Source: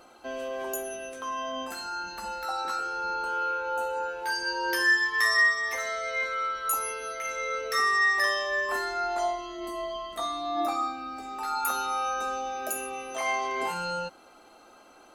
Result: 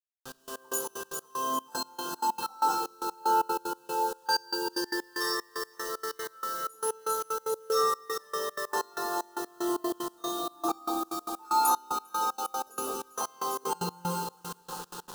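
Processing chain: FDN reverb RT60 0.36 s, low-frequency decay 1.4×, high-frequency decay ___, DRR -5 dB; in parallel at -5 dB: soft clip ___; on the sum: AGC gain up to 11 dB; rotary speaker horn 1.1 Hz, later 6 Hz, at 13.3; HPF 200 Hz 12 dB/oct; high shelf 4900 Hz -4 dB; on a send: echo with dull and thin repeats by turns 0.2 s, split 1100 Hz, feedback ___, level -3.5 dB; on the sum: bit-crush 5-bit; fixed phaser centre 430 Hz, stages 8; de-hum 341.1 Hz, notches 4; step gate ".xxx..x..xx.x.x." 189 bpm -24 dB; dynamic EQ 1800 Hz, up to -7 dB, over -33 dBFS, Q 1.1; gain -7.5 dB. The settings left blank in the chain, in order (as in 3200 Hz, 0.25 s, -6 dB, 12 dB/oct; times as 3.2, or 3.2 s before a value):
0.75×, -15 dBFS, 72%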